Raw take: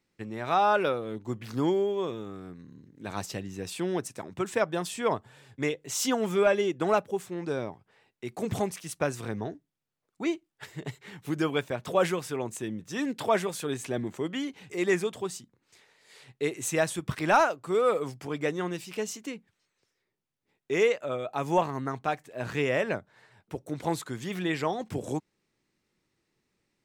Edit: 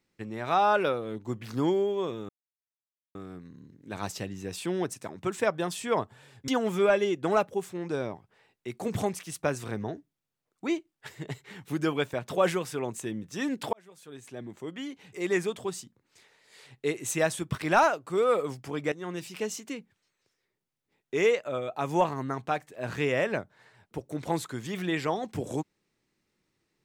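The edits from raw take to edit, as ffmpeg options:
ffmpeg -i in.wav -filter_complex "[0:a]asplit=5[link_01][link_02][link_03][link_04][link_05];[link_01]atrim=end=2.29,asetpts=PTS-STARTPTS,afade=type=out:start_time=2.286:duration=0.004:curve=hsin,apad=pad_dur=0.86[link_06];[link_02]atrim=start=2.29:end=5.622,asetpts=PTS-STARTPTS,afade=type=in:duration=0.004:curve=hsin[link_07];[link_03]atrim=start=6.048:end=13.3,asetpts=PTS-STARTPTS,afade=type=out:start_time=7.248:duration=0.004:curve=hsin[link_08];[link_04]atrim=start=13.3:end=18.49,asetpts=PTS-STARTPTS,afade=type=in:duration=1.95,afade=type=out:start_time=5.186:duration=0.004:curve=hsin:silence=0.188365[link_09];[link_05]atrim=start=18.49,asetpts=PTS-STARTPTS,afade=type=in:duration=0.31:silence=0.188365[link_10];[link_06][link_07]concat=n=2:v=0:a=1[link_11];[link_08][link_09][link_10]concat=n=3:v=0:a=1[link_12];[link_11][link_12]acrossfade=duration=0.004:curve1=hsin:curve2=hsin" out.wav

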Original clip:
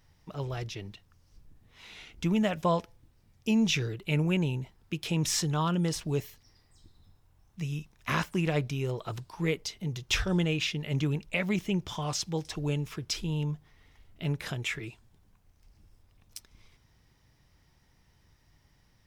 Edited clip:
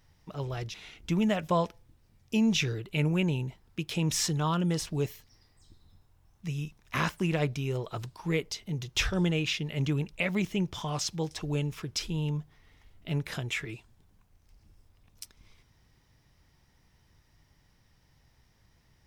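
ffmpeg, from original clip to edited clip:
ffmpeg -i in.wav -filter_complex "[0:a]asplit=2[link_01][link_02];[link_01]atrim=end=0.742[link_03];[link_02]atrim=start=1.878[link_04];[link_03][link_04]acrossfade=duration=0.004:curve1=hsin:curve2=hsin" out.wav

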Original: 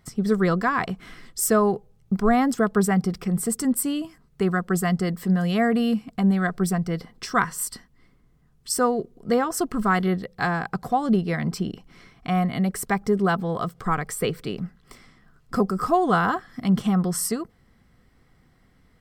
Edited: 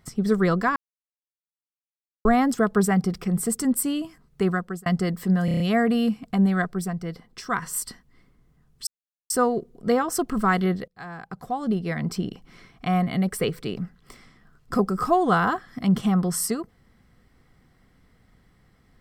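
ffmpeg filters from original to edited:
ffmpeg -i in.wav -filter_complex "[0:a]asplit=14[link_01][link_02][link_03][link_04][link_05][link_06][link_07][link_08][link_09][link_10][link_11][link_12][link_13][link_14];[link_01]atrim=end=0.76,asetpts=PTS-STARTPTS,afade=type=out:start_time=0.756:duration=0.004:curve=hsin[link_15];[link_02]atrim=start=0.76:end=2.25,asetpts=PTS-STARTPTS,volume=0[link_16];[link_03]atrim=start=2.25:end=4.86,asetpts=PTS-STARTPTS,afade=type=in:duration=0.004:curve=hsin,afade=type=out:start_time=2.25:duration=0.36[link_17];[link_04]atrim=start=4.86:end=5.482,asetpts=PTS-STARTPTS,afade=type=in:duration=0.004:curve=hsin[link_18];[link_05]atrim=start=5.448:end=5.482[link_19];[link_06]atrim=start=5.448:end=5.482[link_20];[link_07]atrim=start=5.448:end=5.482[link_21];[link_08]atrim=start=5.448:end=5.482[link_22];[link_09]atrim=start=5.448:end=6.522[link_23];[link_10]atrim=start=6.518:end=7.472,asetpts=PTS-STARTPTS,volume=-5dB[link_24];[link_11]atrim=start=7.468:end=8.72,asetpts=PTS-STARTPTS,afade=type=out:start_time=1.248:duration=0.004:curve=hsin,apad=pad_dur=0.43[link_25];[link_12]atrim=start=8.72:end=10.3,asetpts=PTS-STARTPTS,afade=type=in:duration=0.004:curve=hsin,afade=type=out:start_time=1.576:duration=0.004:curve=hsin:silence=0.0749894[link_26];[link_13]atrim=start=10.3:end=12.792,asetpts=PTS-STARTPTS,afade=type=in:duration=1.38:silence=0.0749894[link_27];[link_14]atrim=start=14.178[link_28];[link_15][link_16][link_17][link_18]concat=n=4:v=0:a=1[link_29];[link_29][link_19]acrossfade=duration=0.004:curve1=hsin:curve2=hsin[link_30];[link_30][link_20]acrossfade=duration=0.004:curve1=hsin:curve2=hsin[link_31];[link_31][link_21]acrossfade=duration=0.004:curve1=hsin:curve2=hsin[link_32];[link_32][link_22]acrossfade=duration=0.004:curve1=hsin:curve2=hsin[link_33];[link_33][link_23]acrossfade=duration=0.004:curve1=hsin:curve2=hsin[link_34];[link_34][link_24]acrossfade=duration=0.004:curve1=hsin:curve2=hsin[link_35];[link_25][link_26][link_27]concat=n=3:v=0:a=1[link_36];[link_35][link_36]acrossfade=duration=0.004:curve1=hsin:curve2=hsin[link_37];[link_37][link_28]acrossfade=duration=0.004:curve1=hsin:curve2=hsin" out.wav

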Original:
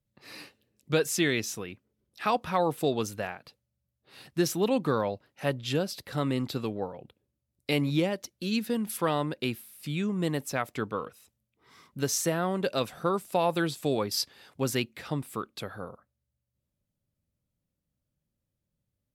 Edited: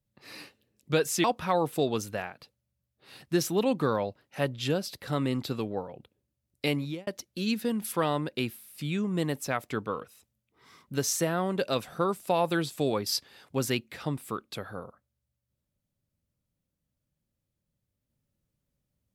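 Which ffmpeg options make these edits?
ffmpeg -i in.wav -filter_complex "[0:a]asplit=3[link_01][link_02][link_03];[link_01]atrim=end=1.242[link_04];[link_02]atrim=start=2.288:end=8.12,asetpts=PTS-STARTPTS,afade=type=out:start_time=5.412:duration=0.42[link_05];[link_03]atrim=start=8.12,asetpts=PTS-STARTPTS,afade=type=in:duration=0.004:curve=hsin[link_06];[link_05][link_06]concat=n=2:v=0:a=1[link_07];[link_04][link_07]acrossfade=duration=0.004:curve1=hsin:curve2=hsin" out.wav

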